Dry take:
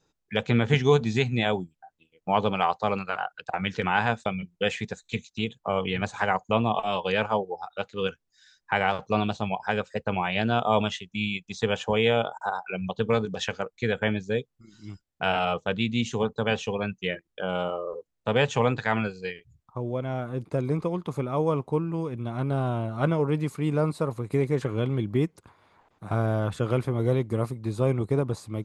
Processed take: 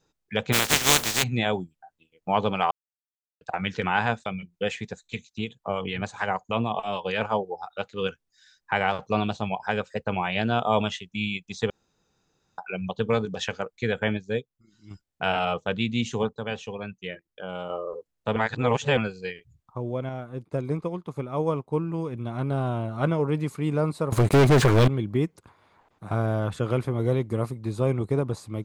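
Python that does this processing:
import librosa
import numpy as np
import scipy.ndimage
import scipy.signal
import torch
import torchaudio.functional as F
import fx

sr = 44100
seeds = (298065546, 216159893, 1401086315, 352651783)

y = fx.spec_flatten(x, sr, power=0.18, at=(0.52, 1.22), fade=0.02)
y = fx.harmonic_tremolo(y, sr, hz=6.6, depth_pct=50, crossover_hz=960.0, at=(4.19, 7.21))
y = fx.upward_expand(y, sr, threshold_db=-40.0, expansion=1.5, at=(14.17, 14.91))
y = fx.upward_expand(y, sr, threshold_db=-43.0, expansion=1.5, at=(20.09, 21.76))
y = fx.leveller(y, sr, passes=5, at=(24.12, 24.88))
y = fx.edit(y, sr, fx.silence(start_s=2.71, length_s=0.7),
    fx.room_tone_fill(start_s=11.7, length_s=0.88),
    fx.clip_gain(start_s=16.29, length_s=1.41, db=-6.0),
    fx.reverse_span(start_s=18.36, length_s=0.61), tone=tone)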